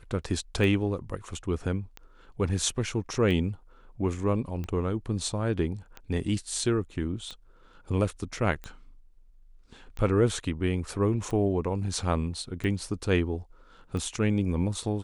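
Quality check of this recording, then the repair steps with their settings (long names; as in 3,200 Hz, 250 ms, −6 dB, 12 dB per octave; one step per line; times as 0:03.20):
scratch tick 45 rpm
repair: click removal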